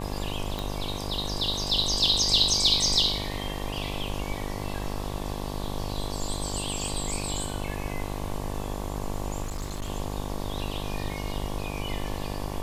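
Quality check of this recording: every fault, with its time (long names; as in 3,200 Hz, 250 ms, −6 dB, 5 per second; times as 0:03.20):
mains buzz 50 Hz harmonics 23 −34 dBFS
0:00.59: click −17 dBFS
0:09.42–0:09.90: clipping −28 dBFS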